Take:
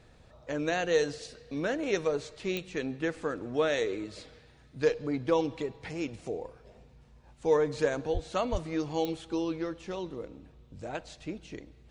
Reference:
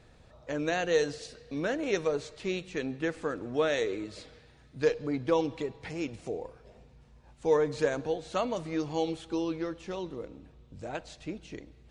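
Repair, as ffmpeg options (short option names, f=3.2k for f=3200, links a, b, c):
-filter_complex "[0:a]adeclick=t=4,asplit=3[a][b][c];[a]afade=t=out:st=8.13:d=0.02[d];[b]highpass=f=140:w=0.5412,highpass=f=140:w=1.3066,afade=t=in:st=8.13:d=0.02,afade=t=out:st=8.25:d=0.02[e];[c]afade=t=in:st=8.25:d=0.02[f];[d][e][f]amix=inputs=3:normalize=0,asplit=3[g][h][i];[g]afade=t=out:st=8.51:d=0.02[j];[h]highpass=f=140:w=0.5412,highpass=f=140:w=1.3066,afade=t=in:st=8.51:d=0.02,afade=t=out:st=8.63:d=0.02[k];[i]afade=t=in:st=8.63:d=0.02[l];[j][k][l]amix=inputs=3:normalize=0"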